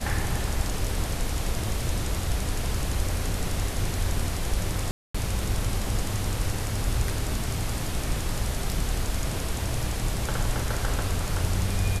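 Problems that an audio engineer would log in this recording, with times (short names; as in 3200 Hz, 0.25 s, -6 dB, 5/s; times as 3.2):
4.91–5.14 gap 0.235 s
7.39 gap 2.1 ms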